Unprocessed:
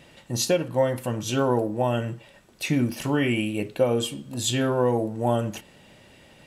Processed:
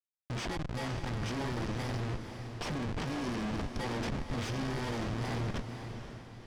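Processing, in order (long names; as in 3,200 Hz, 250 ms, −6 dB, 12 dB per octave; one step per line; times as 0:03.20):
samples in bit-reversed order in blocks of 32 samples
parametric band 590 Hz −13.5 dB 0.41 octaves
downward compressor 8 to 1, threshold −29 dBFS, peak gain reduction 12 dB
comparator with hysteresis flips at −34.5 dBFS
high-frequency loss of the air 100 metres
feedback delay with all-pass diffusion 500 ms, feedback 46%, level −8 dB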